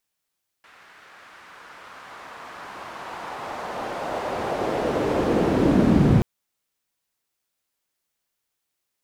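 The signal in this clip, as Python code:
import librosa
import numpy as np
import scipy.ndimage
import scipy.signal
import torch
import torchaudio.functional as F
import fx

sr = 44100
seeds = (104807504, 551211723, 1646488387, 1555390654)

y = fx.riser_noise(sr, seeds[0], length_s=5.58, colour='pink', kind='bandpass', start_hz=1600.0, end_hz=140.0, q=1.5, swell_db=36.5, law='linear')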